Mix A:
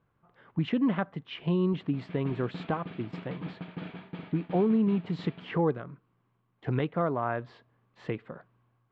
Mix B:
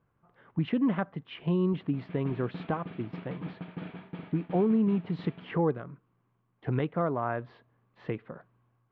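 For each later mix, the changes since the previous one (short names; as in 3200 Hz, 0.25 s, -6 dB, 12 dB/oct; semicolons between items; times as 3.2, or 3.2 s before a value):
master: add air absorption 190 m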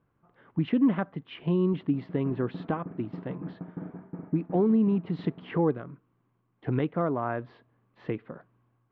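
background: add Bessel low-pass 1000 Hz, order 8; master: add bell 290 Hz +4.5 dB 0.81 oct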